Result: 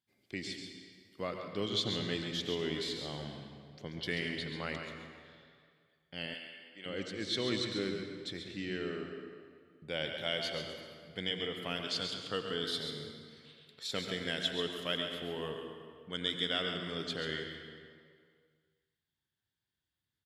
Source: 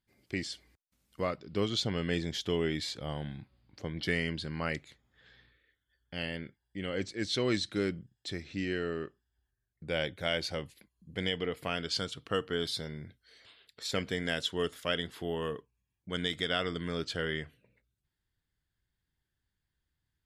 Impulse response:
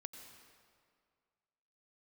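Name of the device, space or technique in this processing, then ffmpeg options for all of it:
PA in a hall: -filter_complex "[0:a]highpass=110,equalizer=f=3500:t=o:w=0.54:g=6,aecho=1:1:136:0.398[s0];[1:a]atrim=start_sample=2205[s1];[s0][s1]afir=irnorm=-1:irlink=0,asettb=1/sr,asplit=3[s2][s3][s4];[s2]atrim=end=6.344[s5];[s3]atrim=start=6.34:end=6.86,asetpts=PTS-STARTPTS,afade=t=in:d=0.004:c=qsin,afade=t=out:st=0.516:d=0.004:c=qsin,highpass=f=970:p=1[s6];[s4]atrim=start=6.856[s7];[s5][s6]acrossfade=d=0.004:c1=hsin:c2=qsin[s8];[s8][s7]acrossfade=d=0.004:c1=qsin:c2=hsin"

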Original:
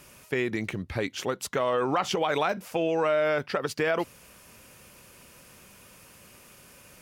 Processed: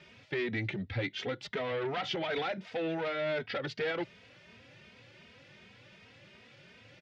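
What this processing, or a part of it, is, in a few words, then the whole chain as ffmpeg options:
barber-pole flanger into a guitar amplifier: -filter_complex "[0:a]asplit=2[s0][s1];[s1]adelay=2.9,afreqshift=2.7[s2];[s0][s2]amix=inputs=2:normalize=1,asoftclip=type=tanh:threshold=0.0355,highpass=92,equalizer=f=110:t=q:w=4:g=7,equalizer=f=1100:t=q:w=4:g=-9,equalizer=f=2000:t=q:w=4:g=6,equalizer=f=3500:t=q:w=4:g=5,lowpass=f=4500:w=0.5412,lowpass=f=4500:w=1.3066"

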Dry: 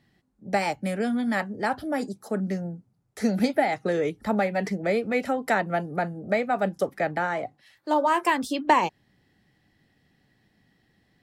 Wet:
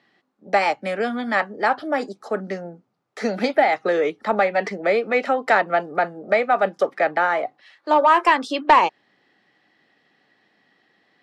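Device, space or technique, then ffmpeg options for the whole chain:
intercom: -af "highpass=400,lowpass=4300,equalizer=f=1200:t=o:w=0.23:g=5,asoftclip=type=tanh:threshold=0.251,volume=2.37"

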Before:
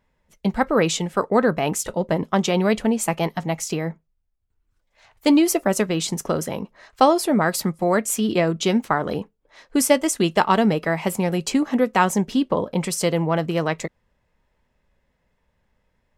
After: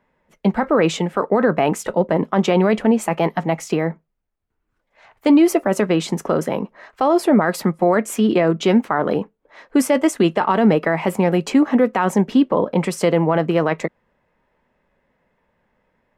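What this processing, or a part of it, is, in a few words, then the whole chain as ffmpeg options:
DJ mixer with the lows and highs turned down: -filter_complex "[0:a]acrossover=split=160 2600:gain=0.224 1 0.224[s0][s1][s2];[s0][s1][s2]amix=inputs=3:normalize=0,alimiter=limit=0.211:level=0:latency=1:release=13,volume=2.24"

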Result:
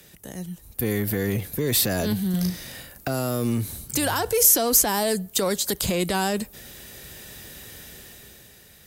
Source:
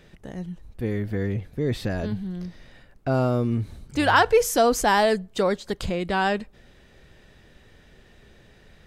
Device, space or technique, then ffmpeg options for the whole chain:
FM broadcast chain: -filter_complex "[0:a]highpass=53,dynaudnorm=f=100:g=17:m=2.99,acrossover=split=140|450|1200|4900[s0][s1][s2][s3][s4];[s0]acompressor=threshold=0.0355:ratio=4[s5];[s1]acompressor=threshold=0.112:ratio=4[s6];[s2]acompressor=threshold=0.0794:ratio=4[s7];[s3]acompressor=threshold=0.0282:ratio=4[s8];[s4]acompressor=threshold=0.0126:ratio=4[s9];[s5][s6][s7][s8][s9]amix=inputs=5:normalize=0,aemphasis=mode=production:type=50fm,alimiter=limit=0.188:level=0:latency=1:release=58,asoftclip=type=hard:threshold=0.158,lowpass=f=15000:w=0.5412,lowpass=f=15000:w=1.3066,aemphasis=mode=production:type=50fm,asettb=1/sr,asplit=3[s10][s11][s12];[s10]atrim=end=2.304[s13];[s11]atrim=start=2.3:end=3.1,asetpts=PTS-STARTPTS,afade=t=in:d=0.004:c=qsin,afade=t=out:st=0.796:d=0.004:c=qsin,asplit=2[s14][s15];[s15]adelay=38,volume=0.708[s16];[s14][s16]amix=inputs=2:normalize=0,atrim=end_sample=35280[s17];[s12]atrim=start=3.096[s18];[s13][s17]acrossfade=d=0.004:c1=hsin:c2=qsin[s19];[s19][s18]acrossfade=d=0.004:c1=qsin:c2=hsin,volume=0.891"

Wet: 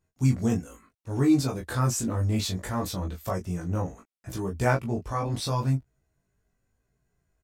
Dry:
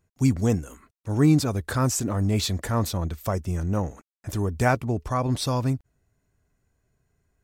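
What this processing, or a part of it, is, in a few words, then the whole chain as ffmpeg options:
double-tracked vocal: -filter_complex "[0:a]asplit=2[s0][s1];[s1]adelay=22,volume=0.631[s2];[s0][s2]amix=inputs=2:normalize=0,flanger=delay=15.5:depth=2.7:speed=0.67,volume=0.841"

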